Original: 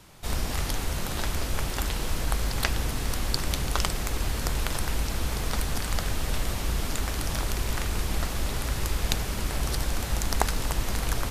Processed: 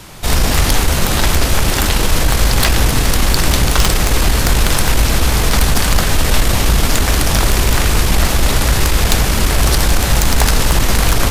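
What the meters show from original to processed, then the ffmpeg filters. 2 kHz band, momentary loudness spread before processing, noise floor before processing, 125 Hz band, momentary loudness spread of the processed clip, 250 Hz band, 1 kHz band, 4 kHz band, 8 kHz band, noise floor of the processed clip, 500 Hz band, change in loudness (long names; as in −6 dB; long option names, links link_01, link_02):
+16.0 dB, 3 LU, −32 dBFS, +15.0 dB, 1 LU, +15.5 dB, +14.5 dB, +16.0 dB, +16.0 dB, −16 dBFS, +15.5 dB, +15.5 dB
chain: -af "aeval=exprs='(tanh(4.47*val(0)+0.7)-tanh(0.7))/4.47':channel_layout=same,apsyclip=25.5dB,bandreject=frequency=45.68:width_type=h:width=4,bandreject=frequency=91.36:width_type=h:width=4,bandreject=frequency=137.04:width_type=h:width=4,bandreject=frequency=182.72:width_type=h:width=4,bandreject=frequency=228.4:width_type=h:width=4,bandreject=frequency=274.08:width_type=h:width=4,bandreject=frequency=319.76:width_type=h:width=4,bandreject=frequency=365.44:width_type=h:width=4,bandreject=frequency=411.12:width_type=h:width=4,bandreject=frequency=456.8:width_type=h:width=4,bandreject=frequency=502.48:width_type=h:width=4,bandreject=frequency=548.16:width_type=h:width=4,bandreject=frequency=593.84:width_type=h:width=4,bandreject=frequency=639.52:width_type=h:width=4,bandreject=frequency=685.2:width_type=h:width=4,bandreject=frequency=730.88:width_type=h:width=4,bandreject=frequency=776.56:width_type=h:width=4,bandreject=frequency=822.24:width_type=h:width=4,bandreject=frequency=867.92:width_type=h:width=4,bandreject=frequency=913.6:width_type=h:width=4,bandreject=frequency=959.28:width_type=h:width=4,bandreject=frequency=1004.96:width_type=h:width=4,bandreject=frequency=1050.64:width_type=h:width=4,bandreject=frequency=1096.32:width_type=h:width=4,bandreject=frequency=1142:width_type=h:width=4,bandreject=frequency=1187.68:width_type=h:width=4,bandreject=frequency=1233.36:width_type=h:width=4,bandreject=frequency=1279.04:width_type=h:width=4,bandreject=frequency=1324.72:width_type=h:width=4,bandreject=frequency=1370.4:width_type=h:width=4,bandreject=frequency=1416.08:width_type=h:width=4,bandreject=frequency=1461.76:width_type=h:width=4,volume=-4.5dB"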